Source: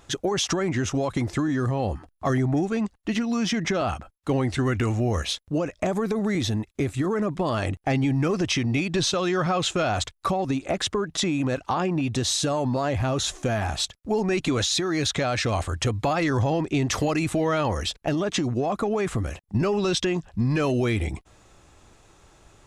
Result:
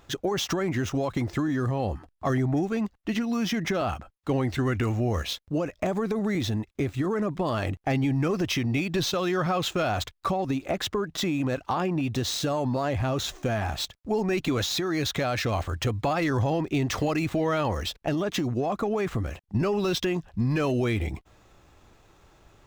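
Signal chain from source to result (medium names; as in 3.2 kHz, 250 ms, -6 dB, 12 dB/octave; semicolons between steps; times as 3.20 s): median filter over 5 samples; trim -2 dB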